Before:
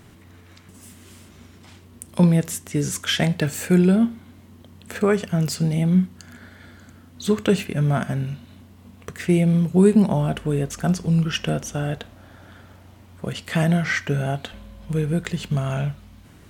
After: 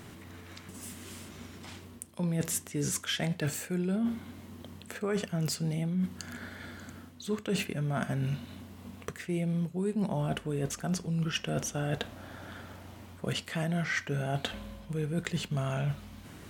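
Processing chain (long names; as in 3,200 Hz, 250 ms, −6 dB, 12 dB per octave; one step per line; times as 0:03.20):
low-shelf EQ 86 Hz −8.5 dB
reversed playback
downward compressor 12 to 1, threshold −30 dBFS, peak gain reduction 19.5 dB
reversed playback
level +2 dB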